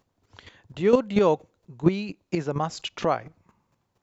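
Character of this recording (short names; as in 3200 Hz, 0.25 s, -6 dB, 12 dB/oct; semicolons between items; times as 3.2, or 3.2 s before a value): chopped level 4.3 Hz, depth 65%, duty 10%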